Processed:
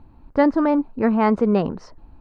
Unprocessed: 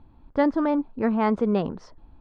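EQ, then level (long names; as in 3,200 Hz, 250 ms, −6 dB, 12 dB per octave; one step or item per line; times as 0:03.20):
notch filter 3,400 Hz, Q 7.4
+4.5 dB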